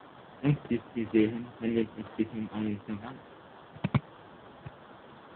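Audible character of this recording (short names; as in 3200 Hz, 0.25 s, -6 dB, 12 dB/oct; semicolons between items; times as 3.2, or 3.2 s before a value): a quantiser's noise floor 8-bit, dither triangular; phasing stages 8, 1.9 Hz, lowest notch 460–1400 Hz; aliases and images of a low sample rate 2400 Hz, jitter 20%; AMR-NB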